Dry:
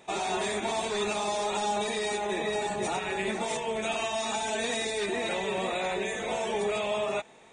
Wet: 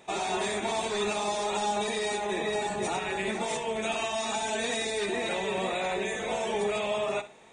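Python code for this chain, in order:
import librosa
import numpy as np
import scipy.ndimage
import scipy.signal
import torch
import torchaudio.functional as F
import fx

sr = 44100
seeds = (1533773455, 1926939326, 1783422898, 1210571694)

y = fx.room_flutter(x, sr, wall_m=10.9, rt60_s=0.26)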